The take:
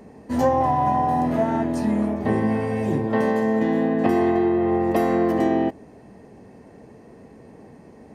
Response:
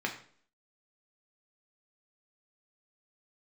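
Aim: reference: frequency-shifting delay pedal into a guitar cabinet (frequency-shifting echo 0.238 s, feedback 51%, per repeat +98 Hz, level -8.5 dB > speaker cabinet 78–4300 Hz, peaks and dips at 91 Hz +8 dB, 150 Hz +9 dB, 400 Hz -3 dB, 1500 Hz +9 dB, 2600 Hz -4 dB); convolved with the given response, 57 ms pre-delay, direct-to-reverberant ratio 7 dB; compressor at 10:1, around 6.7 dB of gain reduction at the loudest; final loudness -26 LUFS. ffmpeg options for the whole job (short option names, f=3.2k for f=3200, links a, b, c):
-filter_complex "[0:a]acompressor=threshold=-21dB:ratio=10,asplit=2[a][b];[1:a]atrim=start_sample=2205,adelay=57[c];[b][c]afir=irnorm=-1:irlink=0,volume=-13dB[d];[a][d]amix=inputs=2:normalize=0,asplit=7[e][f][g][h][i][j][k];[f]adelay=238,afreqshift=98,volume=-8.5dB[l];[g]adelay=476,afreqshift=196,volume=-14.3dB[m];[h]adelay=714,afreqshift=294,volume=-20.2dB[n];[i]adelay=952,afreqshift=392,volume=-26dB[o];[j]adelay=1190,afreqshift=490,volume=-31.9dB[p];[k]adelay=1428,afreqshift=588,volume=-37.7dB[q];[e][l][m][n][o][p][q]amix=inputs=7:normalize=0,highpass=78,equalizer=f=91:t=q:w=4:g=8,equalizer=f=150:t=q:w=4:g=9,equalizer=f=400:t=q:w=4:g=-3,equalizer=f=1.5k:t=q:w=4:g=9,equalizer=f=2.6k:t=q:w=4:g=-4,lowpass=f=4.3k:w=0.5412,lowpass=f=4.3k:w=1.3066,volume=-2.5dB"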